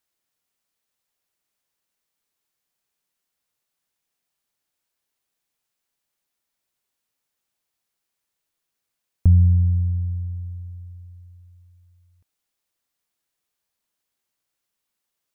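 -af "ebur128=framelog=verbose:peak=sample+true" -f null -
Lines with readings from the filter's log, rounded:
Integrated loudness:
  I:         -20.4 LUFS
  Threshold: -33.8 LUFS
Loudness range:
  LRA:        16.0 LU
  Threshold: -46.2 LUFS
  LRA low:   -39.4 LUFS
  LRA high:  -23.4 LUFS
Sample peak:
  Peak:       -7.2 dBFS
True peak:
  Peak:       -7.2 dBFS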